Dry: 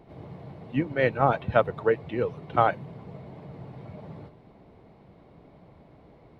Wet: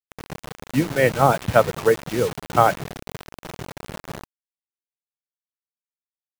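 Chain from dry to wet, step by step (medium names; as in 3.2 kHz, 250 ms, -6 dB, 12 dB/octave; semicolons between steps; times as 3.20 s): dynamic bell 170 Hz, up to +3 dB, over -51 dBFS, Q 5.6; bit crusher 6-bit; trim +5.5 dB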